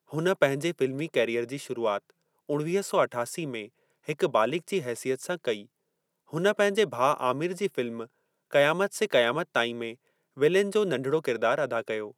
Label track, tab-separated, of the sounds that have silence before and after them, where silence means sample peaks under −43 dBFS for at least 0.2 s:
2.490000	3.660000	sound
4.080000	5.650000	sound
6.330000	8.050000	sound
8.510000	9.940000	sound